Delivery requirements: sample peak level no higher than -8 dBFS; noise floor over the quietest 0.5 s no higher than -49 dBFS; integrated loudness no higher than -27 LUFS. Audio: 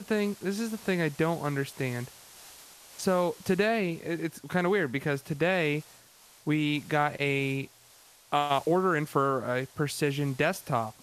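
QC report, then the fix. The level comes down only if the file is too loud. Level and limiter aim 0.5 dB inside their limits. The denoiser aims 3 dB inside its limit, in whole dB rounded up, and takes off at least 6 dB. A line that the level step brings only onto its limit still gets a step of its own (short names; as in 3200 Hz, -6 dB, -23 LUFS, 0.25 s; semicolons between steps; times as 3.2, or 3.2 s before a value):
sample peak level -11.0 dBFS: OK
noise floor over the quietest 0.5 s -57 dBFS: OK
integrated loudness -29.0 LUFS: OK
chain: none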